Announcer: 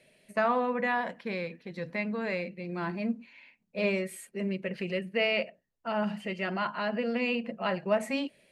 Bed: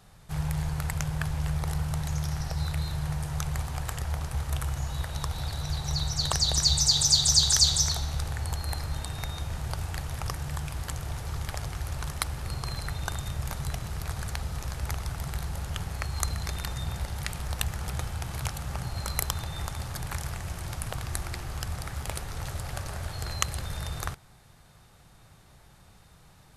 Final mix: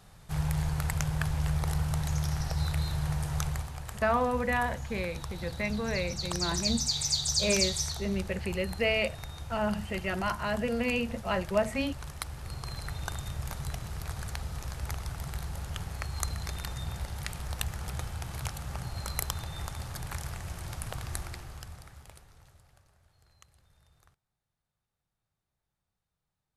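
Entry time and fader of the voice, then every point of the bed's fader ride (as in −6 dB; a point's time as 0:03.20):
3.65 s, 0.0 dB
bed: 0:03.45 0 dB
0:03.75 −7.5 dB
0:12.16 −7.5 dB
0:12.97 −3.5 dB
0:21.18 −3.5 dB
0:22.97 −31 dB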